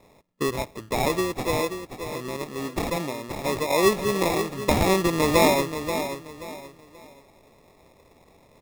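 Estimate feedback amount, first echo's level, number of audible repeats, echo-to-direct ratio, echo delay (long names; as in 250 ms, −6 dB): 30%, −9.0 dB, 3, −8.5 dB, 531 ms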